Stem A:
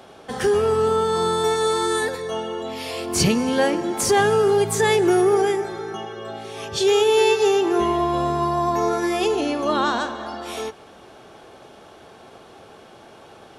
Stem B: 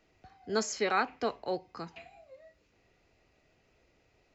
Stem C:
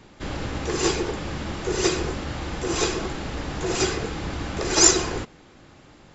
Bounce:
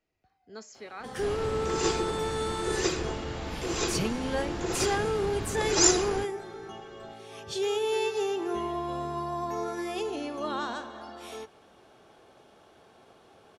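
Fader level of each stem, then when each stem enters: -11.5, -14.0, -6.0 dB; 0.75, 0.00, 1.00 s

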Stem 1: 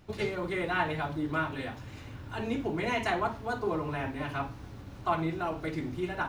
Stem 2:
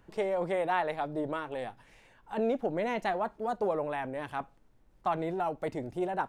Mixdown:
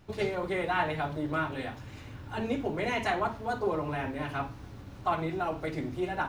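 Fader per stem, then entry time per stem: -0.5, -6.0 dB; 0.00, 0.00 s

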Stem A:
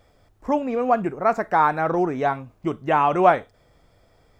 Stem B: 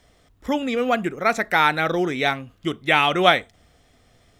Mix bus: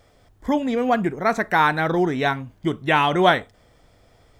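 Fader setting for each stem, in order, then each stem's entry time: +1.5, -5.0 dB; 0.00, 0.00 s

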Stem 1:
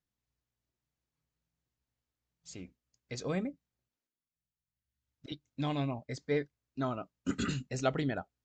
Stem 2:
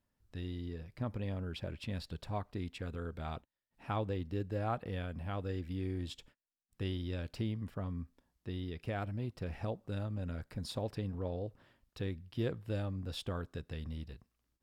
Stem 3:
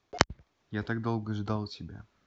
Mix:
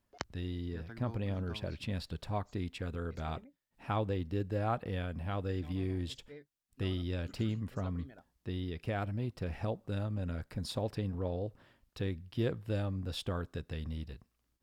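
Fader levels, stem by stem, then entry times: -20.0, +2.5, -17.0 dB; 0.00, 0.00, 0.00 s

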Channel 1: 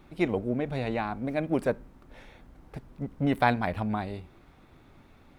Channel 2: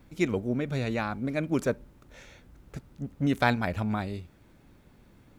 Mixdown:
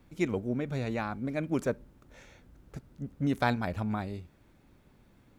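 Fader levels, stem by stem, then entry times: -16.0, -4.5 dB; 0.00, 0.00 s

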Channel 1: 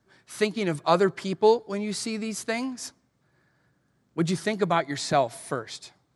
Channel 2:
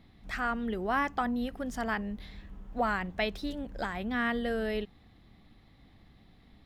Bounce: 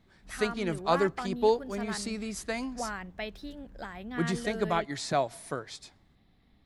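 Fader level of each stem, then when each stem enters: -5.0, -6.5 dB; 0.00, 0.00 s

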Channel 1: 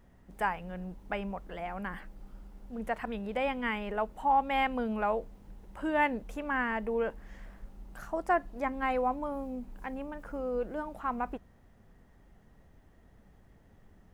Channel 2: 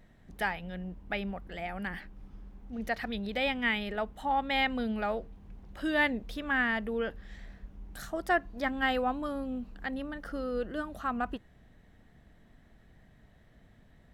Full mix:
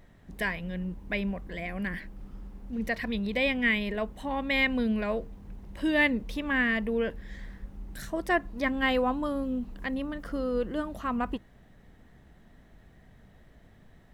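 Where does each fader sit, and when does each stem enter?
-1.0, +2.0 dB; 0.00, 0.00 s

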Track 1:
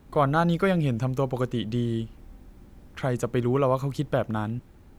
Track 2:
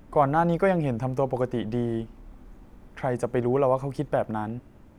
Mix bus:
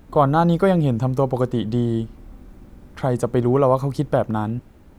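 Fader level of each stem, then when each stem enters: +1.5, 0.0 dB; 0.00, 0.00 s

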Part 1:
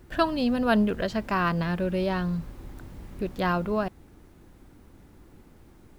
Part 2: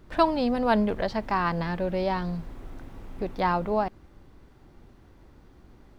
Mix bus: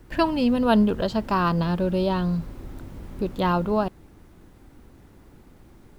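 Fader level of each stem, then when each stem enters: +1.0, -3.5 dB; 0.00, 0.00 s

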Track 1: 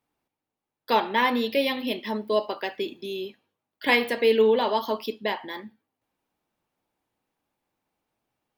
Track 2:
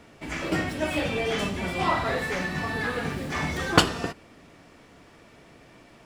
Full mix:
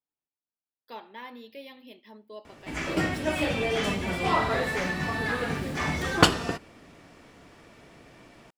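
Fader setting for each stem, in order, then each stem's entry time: -20.0, 0.0 dB; 0.00, 2.45 s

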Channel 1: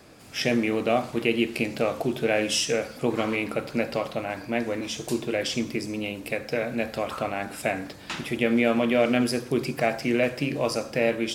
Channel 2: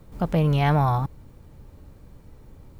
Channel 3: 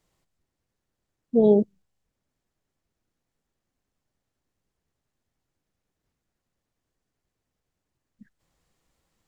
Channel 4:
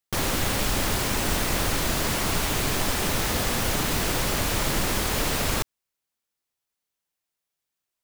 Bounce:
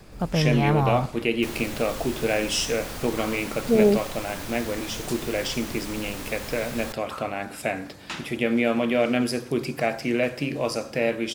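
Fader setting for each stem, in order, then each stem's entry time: -0.5, -2.0, -0.5, -11.0 dB; 0.00, 0.00, 2.35, 1.30 s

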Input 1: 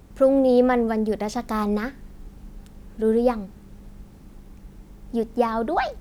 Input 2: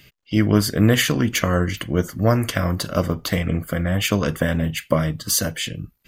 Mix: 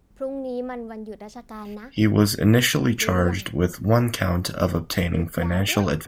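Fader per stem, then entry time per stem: -12.0, -1.0 dB; 0.00, 1.65 s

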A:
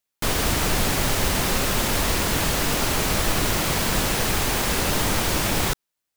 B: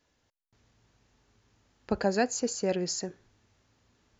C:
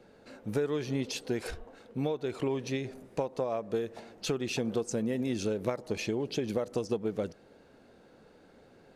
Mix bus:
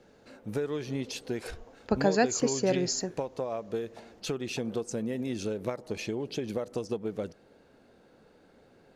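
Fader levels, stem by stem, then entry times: off, +2.0 dB, -1.5 dB; off, 0.00 s, 0.00 s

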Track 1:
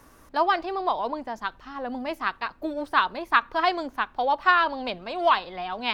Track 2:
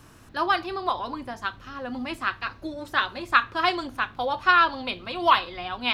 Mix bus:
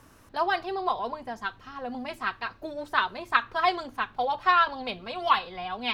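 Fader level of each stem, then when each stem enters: -4.5, -7.0 dB; 0.00, 0.00 s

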